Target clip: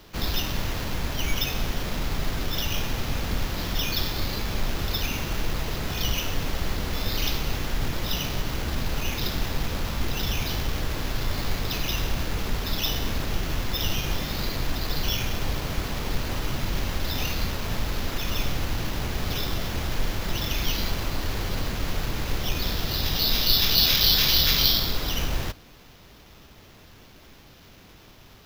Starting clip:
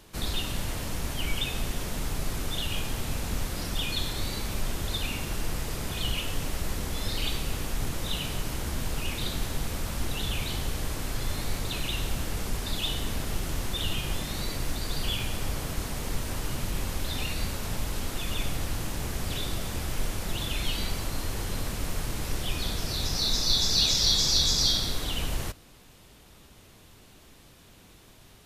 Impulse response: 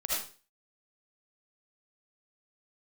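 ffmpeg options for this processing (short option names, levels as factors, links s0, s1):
-af "acrusher=samples=5:mix=1:aa=0.000001,volume=1.5"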